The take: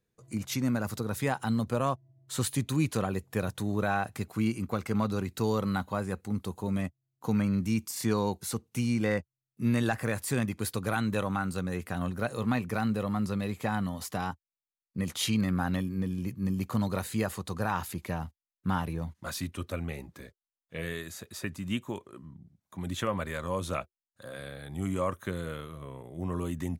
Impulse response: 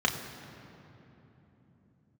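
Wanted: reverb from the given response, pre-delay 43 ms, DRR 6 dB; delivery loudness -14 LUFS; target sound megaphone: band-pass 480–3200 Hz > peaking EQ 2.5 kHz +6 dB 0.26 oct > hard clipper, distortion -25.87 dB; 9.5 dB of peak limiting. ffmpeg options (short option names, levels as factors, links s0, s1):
-filter_complex "[0:a]alimiter=level_in=1.12:limit=0.0631:level=0:latency=1,volume=0.891,asplit=2[s0][s1];[1:a]atrim=start_sample=2205,adelay=43[s2];[s1][s2]afir=irnorm=-1:irlink=0,volume=0.133[s3];[s0][s3]amix=inputs=2:normalize=0,highpass=480,lowpass=3200,equalizer=f=2500:t=o:w=0.26:g=6,asoftclip=type=hard:threshold=0.0316,volume=26.6"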